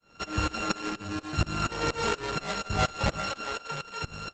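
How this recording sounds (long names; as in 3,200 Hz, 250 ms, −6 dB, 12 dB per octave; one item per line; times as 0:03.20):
a buzz of ramps at a fixed pitch in blocks of 32 samples
tremolo saw up 4.2 Hz, depth 100%
Opus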